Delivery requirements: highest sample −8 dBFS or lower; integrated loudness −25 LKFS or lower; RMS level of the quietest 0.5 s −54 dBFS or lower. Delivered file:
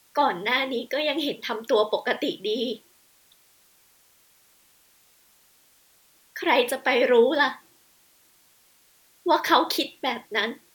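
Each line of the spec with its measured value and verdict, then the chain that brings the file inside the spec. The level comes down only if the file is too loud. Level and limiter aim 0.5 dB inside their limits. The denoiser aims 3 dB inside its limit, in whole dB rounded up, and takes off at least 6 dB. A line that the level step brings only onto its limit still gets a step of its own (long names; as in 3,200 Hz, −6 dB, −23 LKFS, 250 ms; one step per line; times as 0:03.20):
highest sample −4.0 dBFS: out of spec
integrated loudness −24.0 LKFS: out of spec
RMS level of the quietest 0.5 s −60 dBFS: in spec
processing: level −1.5 dB
brickwall limiter −8.5 dBFS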